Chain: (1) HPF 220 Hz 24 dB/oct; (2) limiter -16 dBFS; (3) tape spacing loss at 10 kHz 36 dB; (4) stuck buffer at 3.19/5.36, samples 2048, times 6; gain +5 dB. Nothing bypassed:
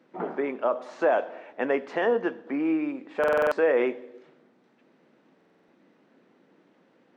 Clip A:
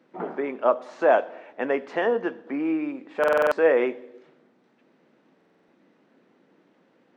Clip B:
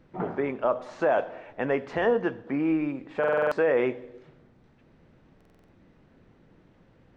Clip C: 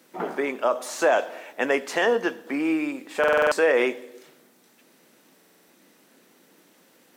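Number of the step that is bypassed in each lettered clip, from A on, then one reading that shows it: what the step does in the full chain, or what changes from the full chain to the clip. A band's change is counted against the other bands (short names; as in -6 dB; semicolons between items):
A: 2, crest factor change +4.0 dB; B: 1, 125 Hz band +11.0 dB; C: 3, 4 kHz band +8.5 dB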